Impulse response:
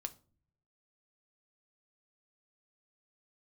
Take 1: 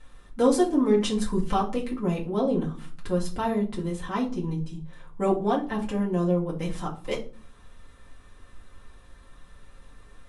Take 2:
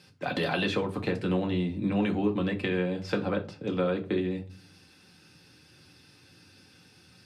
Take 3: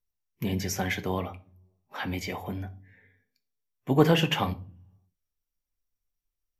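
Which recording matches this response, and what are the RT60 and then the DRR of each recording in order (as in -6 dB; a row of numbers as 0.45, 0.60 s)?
3; 0.40, 0.40, 0.40 s; -4.5, 2.0, 7.0 dB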